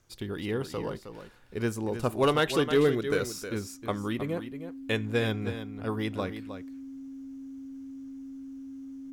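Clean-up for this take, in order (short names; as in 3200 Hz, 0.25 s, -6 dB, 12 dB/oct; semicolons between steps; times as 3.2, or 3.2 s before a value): clip repair -16 dBFS; notch 270 Hz, Q 30; inverse comb 0.314 s -10 dB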